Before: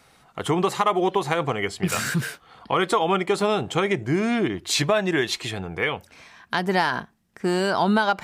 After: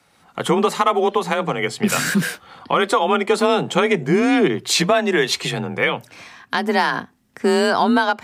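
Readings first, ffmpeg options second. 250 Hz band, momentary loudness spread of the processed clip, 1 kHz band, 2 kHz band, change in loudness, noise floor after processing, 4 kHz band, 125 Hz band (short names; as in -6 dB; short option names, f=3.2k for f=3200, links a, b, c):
+5.0 dB, 7 LU, +4.0 dB, +5.0 dB, +4.5 dB, -58 dBFS, +5.0 dB, +1.0 dB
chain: -af "dynaudnorm=f=100:g=5:m=11.5dB,afreqshift=32,volume=-3dB"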